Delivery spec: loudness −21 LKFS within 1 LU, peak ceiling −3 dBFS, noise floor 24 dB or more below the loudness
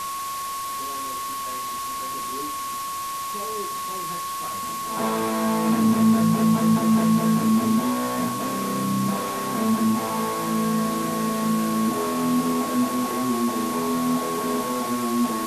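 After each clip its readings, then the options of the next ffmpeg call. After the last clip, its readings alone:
interfering tone 1,100 Hz; level of the tone −28 dBFS; background noise floor −30 dBFS; target noise floor −48 dBFS; integrated loudness −23.5 LKFS; sample peak −9.0 dBFS; target loudness −21.0 LKFS
→ -af "bandreject=frequency=1100:width=30"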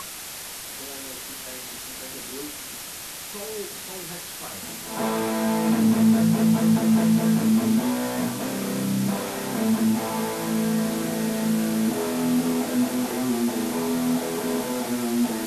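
interfering tone none found; background noise floor −37 dBFS; target noise floor −49 dBFS
→ -af "afftdn=noise_reduction=12:noise_floor=-37"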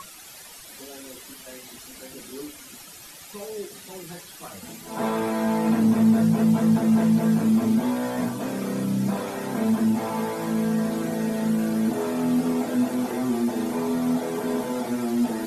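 background noise floor −44 dBFS; target noise floor −48 dBFS
→ -af "afftdn=noise_reduction=6:noise_floor=-44"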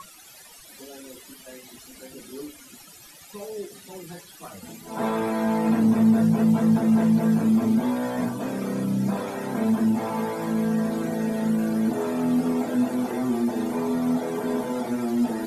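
background noise floor −48 dBFS; integrated loudness −23.5 LKFS; sample peak −10.0 dBFS; target loudness −21.0 LKFS
→ -af "volume=2.5dB"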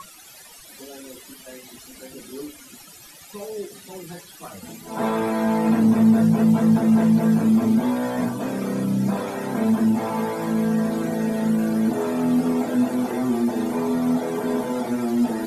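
integrated loudness −21.0 LKFS; sample peak −7.5 dBFS; background noise floor −45 dBFS

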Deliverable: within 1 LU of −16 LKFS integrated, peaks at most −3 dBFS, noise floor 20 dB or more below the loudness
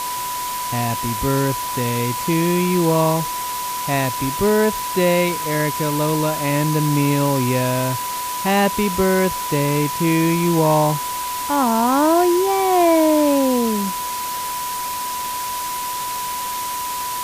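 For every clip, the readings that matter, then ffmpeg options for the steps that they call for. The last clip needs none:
interfering tone 990 Hz; level of the tone −24 dBFS; background noise floor −25 dBFS; target noise floor −39 dBFS; integrated loudness −19.0 LKFS; sample peak −6.0 dBFS; target loudness −16.0 LKFS
→ -af "bandreject=frequency=990:width=30"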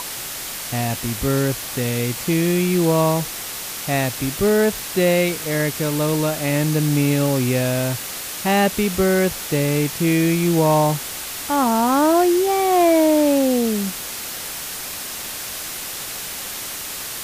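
interfering tone none found; background noise floor −30 dBFS; target noise floor −40 dBFS
→ -af "afftdn=noise_reduction=10:noise_floor=-30"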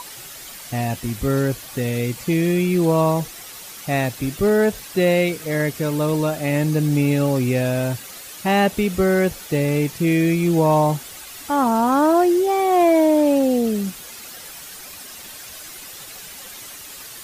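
background noise floor −38 dBFS; target noise floor −40 dBFS
→ -af "afftdn=noise_reduction=6:noise_floor=-38"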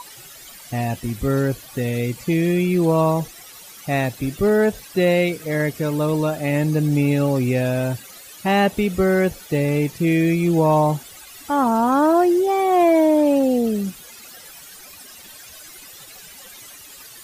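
background noise floor −42 dBFS; integrated loudness −19.5 LKFS; sample peak −7.5 dBFS; target loudness −16.0 LKFS
→ -af "volume=3.5dB"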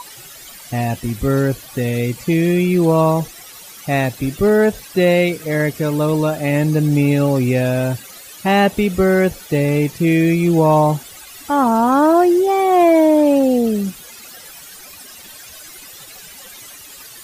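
integrated loudness −16.0 LKFS; sample peak −4.0 dBFS; background noise floor −38 dBFS

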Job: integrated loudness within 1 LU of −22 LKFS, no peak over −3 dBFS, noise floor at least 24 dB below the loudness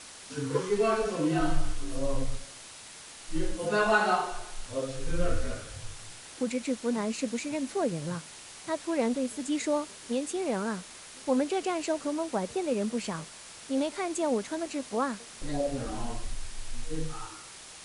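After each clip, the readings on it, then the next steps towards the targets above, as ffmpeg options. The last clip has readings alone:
background noise floor −47 dBFS; target noise floor −56 dBFS; integrated loudness −31.5 LKFS; sample peak −11.5 dBFS; target loudness −22.0 LKFS
→ -af "afftdn=noise_reduction=9:noise_floor=-47"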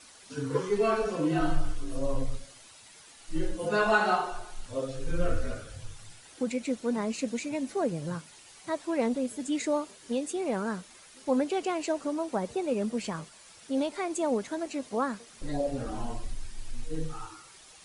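background noise floor −53 dBFS; target noise floor −56 dBFS
→ -af "afftdn=noise_reduction=6:noise_floor=-53"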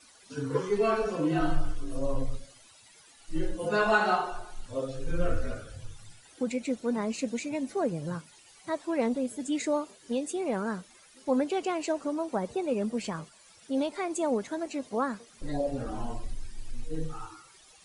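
background noise floor −57 dBFS; integrated loudness −31.5 LKFS; sample peak −11.5 dBFS; target loudness −22.0 LKFS
→ -af "volume=9.5dB,alimiter=limit=-3dB:level=0:latency=1"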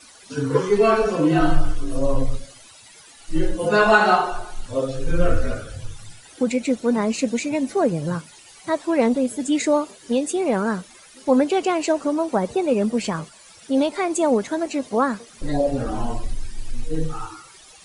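integrated loudness −22.0 LKFS; sample peak −3.0 dBFS; background noise floor −47 dBFS

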